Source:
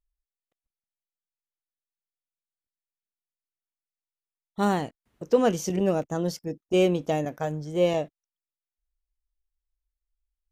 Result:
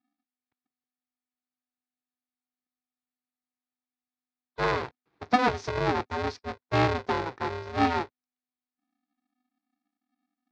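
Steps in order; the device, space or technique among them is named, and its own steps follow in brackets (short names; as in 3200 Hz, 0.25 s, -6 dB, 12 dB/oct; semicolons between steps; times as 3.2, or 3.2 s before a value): ring modulator pedal into a guitar cabinet (polarity switched at an audio rate 250 Hz; speaker cabinet 110–4400 Hz, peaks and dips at 200 Hz -7 dB, 570 Hz -7 dB, 3000 Hz -8 dB)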